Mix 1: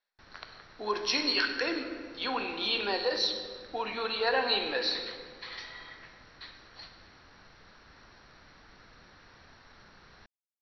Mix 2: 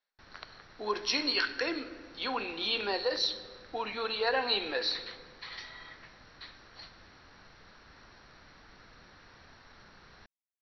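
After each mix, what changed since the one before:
speech: send -7.5 dB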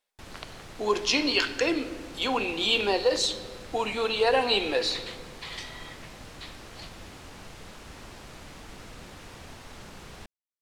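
background +4.5 dB; master: remove rippled Chebyshev low-pass 5800 Hz, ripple 9 dB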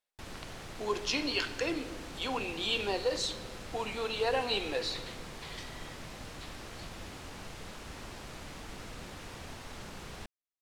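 speech -7.5 dB

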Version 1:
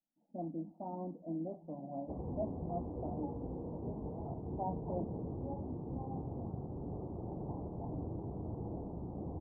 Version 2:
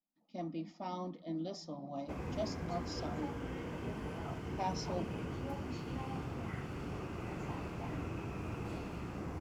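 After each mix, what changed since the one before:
master: remove steep low-pass 880 Hz 48 dB/oct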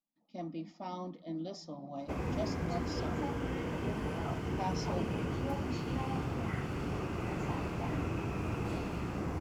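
background +5.5 dB

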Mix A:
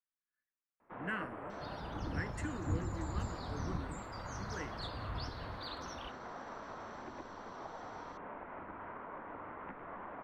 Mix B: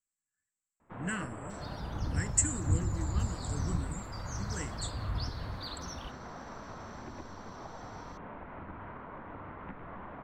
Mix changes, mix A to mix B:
speech: add synth low-pass 7700 Hz, resonance Q 14; second sound -4.0 dB; master: remove three-band isolator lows -12 dB, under 260 Hz, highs -13 dB, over 3100 Hz

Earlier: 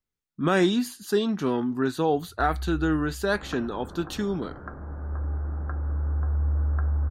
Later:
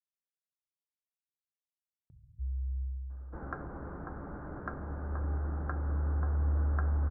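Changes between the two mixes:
speech: muted; first sound: add bell 87 Hz -9 dB 0.54 oct

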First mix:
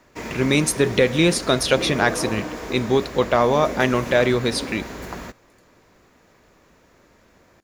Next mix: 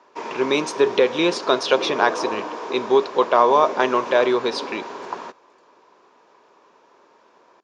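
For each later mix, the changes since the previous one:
background: remove notch 850 Hz, Q 17; master: add speaker cabinet 380–5700 Hz, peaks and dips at 400 Hz +6 dB, 1000 Hz +10 dB, 2000 Hz -7 dB, 4300 Hz -3 dB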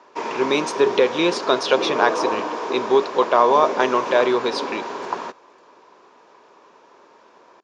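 background +4.0 dB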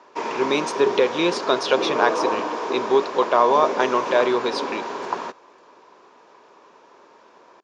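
reverb: off

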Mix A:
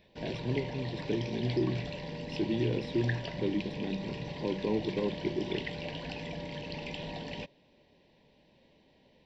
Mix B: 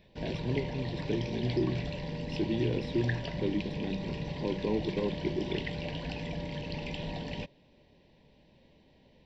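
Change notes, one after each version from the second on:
background: add low shelf 150 Hz +9 dB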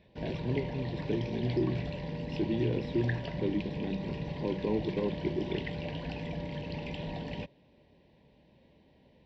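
background: add HPF 42 Hz; master: add high shelf 4700 Hz -11.5 dB

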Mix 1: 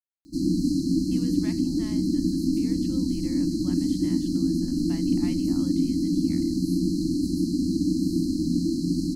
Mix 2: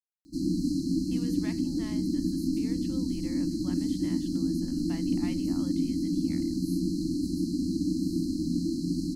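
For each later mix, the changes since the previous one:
background -4.5 dB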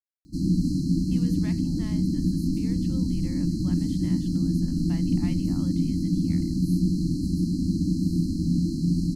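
background: add resonant low shelf 220 Hz +10 dB, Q 1.5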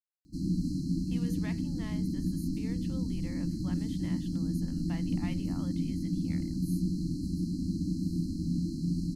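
background -7.5 dB

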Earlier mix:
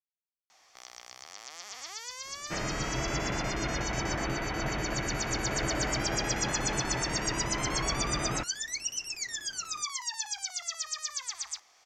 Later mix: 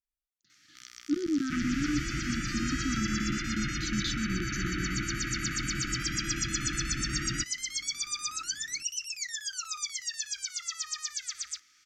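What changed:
speech: unmuted; second sound: entry -1.00 s; master: add brick-wall FIR band-stop 360–1200 Hz

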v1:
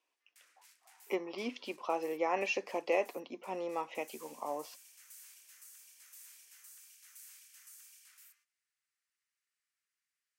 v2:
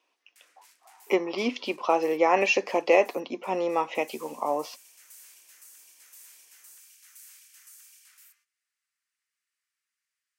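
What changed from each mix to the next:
speech +11.0 dB; background +4.0 dB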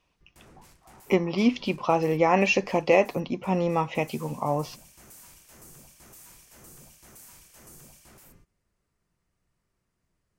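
speech: remove HPF 300 Hz 24 dB/oct; background: remove inverse Chebyshev high-pass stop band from 460 Hz, stop band 60 dB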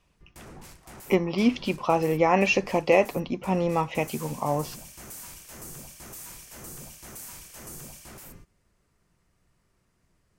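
background +8.0 dB

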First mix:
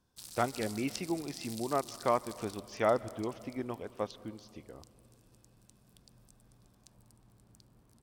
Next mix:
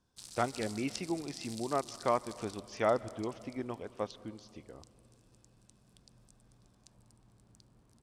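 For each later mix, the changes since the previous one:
master: add Chebyshev low-pass 8200 Hz, order 2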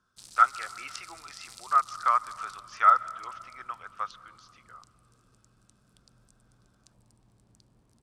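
speech: add resonant high-pass 1300 Hz, resonance Q 13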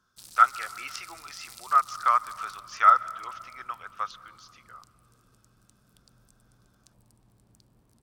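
speech: add high shelf 3900 Hz +8.5 dB; master: remove Chebyshev low-pass 8200 Hz, order 2

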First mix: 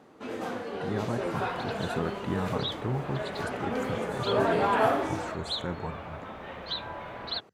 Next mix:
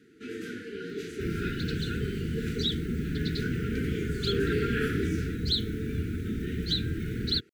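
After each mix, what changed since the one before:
speech: muted; second sound: remove three-band isolator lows -18 dB, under 580 Hz, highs -23 dB, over 3900 Hz; master: add Chebyshev band-stop 450–1400 Hz, order 5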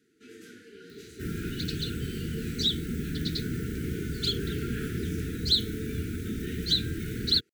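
first sound -10.5 dB; master: add tone controls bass -2 dB, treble +9 dB

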